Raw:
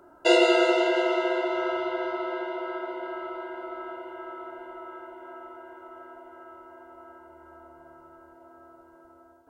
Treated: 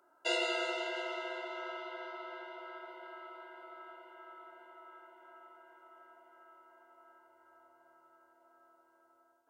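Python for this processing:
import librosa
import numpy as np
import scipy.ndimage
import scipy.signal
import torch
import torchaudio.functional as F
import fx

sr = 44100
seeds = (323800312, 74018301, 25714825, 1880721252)

y = fx.highpass(x, sr, hz=1300.0, slope=6)
y = y * librosa.db_to_amplitude(-8.0)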